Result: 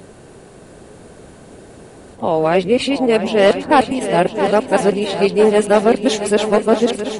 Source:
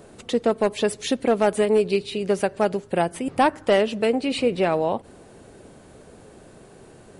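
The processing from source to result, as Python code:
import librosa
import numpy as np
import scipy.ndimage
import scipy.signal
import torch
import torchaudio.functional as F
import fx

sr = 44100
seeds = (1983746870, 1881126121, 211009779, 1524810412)

y = x[::-1].copy()
y = fx.echo_heads(y, sr, ms=335, heads='second and third', feedback_pct=56, wet_db=-11.0)
y = y * 10.0 ** (6.5 / 20.0)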